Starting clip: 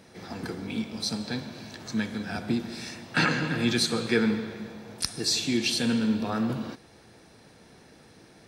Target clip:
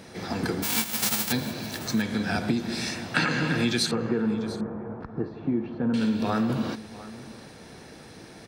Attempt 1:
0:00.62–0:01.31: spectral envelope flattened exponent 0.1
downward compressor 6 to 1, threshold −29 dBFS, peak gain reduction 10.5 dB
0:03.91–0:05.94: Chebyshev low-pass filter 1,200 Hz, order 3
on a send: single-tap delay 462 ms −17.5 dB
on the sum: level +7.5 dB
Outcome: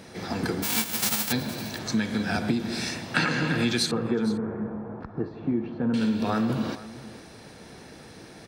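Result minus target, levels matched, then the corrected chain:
echo 234 ms early
0:00.62–0:01.31: spectral envelope flattened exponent 0.1
downward compressor 6 to 1, threshold −29 dBFS, peak gain reduction 10.5 dB
0:03.91–0:05.94: Chebyshev low-pass filter 1,200 Hz, order 3
on a send: single-tap delay 696 ms −17.5 dB
on the sum: level +7.5 dB

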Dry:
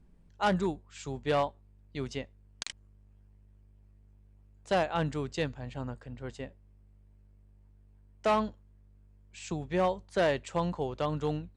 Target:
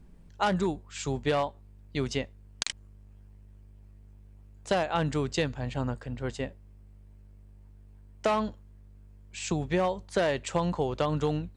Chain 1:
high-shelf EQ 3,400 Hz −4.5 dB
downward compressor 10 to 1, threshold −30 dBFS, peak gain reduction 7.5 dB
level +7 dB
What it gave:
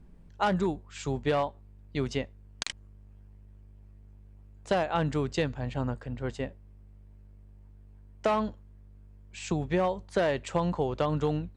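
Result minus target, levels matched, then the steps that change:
8,000 Hz band −4.5 dB
change: high-shelf EQ 3,400 Hz +2 dB

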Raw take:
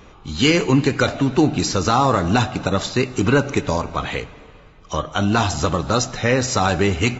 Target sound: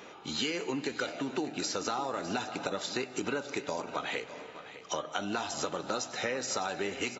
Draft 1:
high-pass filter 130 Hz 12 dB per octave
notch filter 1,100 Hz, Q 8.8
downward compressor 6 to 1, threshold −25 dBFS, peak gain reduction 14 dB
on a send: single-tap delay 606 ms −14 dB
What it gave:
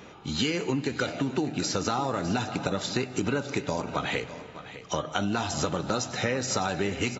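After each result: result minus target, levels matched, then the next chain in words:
125 Hz band +9.5 dB; downward compressor: peak gain reduction −3.5 dB
high-pass filter 320 Hz 12 dB per octave
notch filter 1,100 Hz, Q 8.8
downward compressor 6 to 1, threshold −25 dBFS, peak gain reduction 12 dB
on a send: single-tap delay 606 ms −14 dB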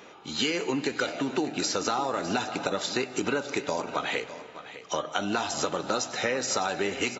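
downward compressor: peak gain reduction −5.5 dB
high-pass filter 320 Hz 12 dB per octave
notch filter 1,100 Hz, Q 8.8
downward compressor 6 to 1, threshold −31.5 dBFS, peak gain reduction 17.5 dB
on a send: single-tap delay 606 ms −14 dB

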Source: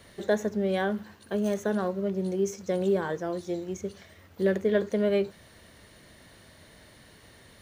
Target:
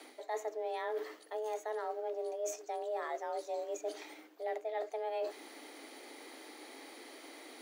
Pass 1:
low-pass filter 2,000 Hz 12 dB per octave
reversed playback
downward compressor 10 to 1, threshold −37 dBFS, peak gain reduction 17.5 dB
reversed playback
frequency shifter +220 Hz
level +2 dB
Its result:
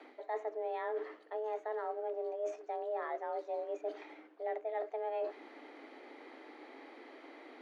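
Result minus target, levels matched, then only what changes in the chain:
2,000 Hz band −3.0 dB
remove: low-pass filter 2,000 Hz 12 dB per octave

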